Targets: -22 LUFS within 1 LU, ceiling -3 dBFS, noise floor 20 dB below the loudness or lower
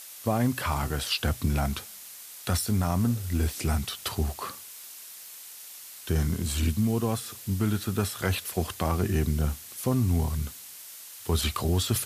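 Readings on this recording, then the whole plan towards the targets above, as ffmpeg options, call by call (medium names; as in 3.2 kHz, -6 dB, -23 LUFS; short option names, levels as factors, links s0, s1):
noise floor -45 dBFS; noise floor target -49 dBFS; loudness -28.5 LUFS; peak level -12.5 dBFS; loudness target -22.0 LUFS
-> -af "afftdn=nr=6:nf=-45"
-af "volume=2.11"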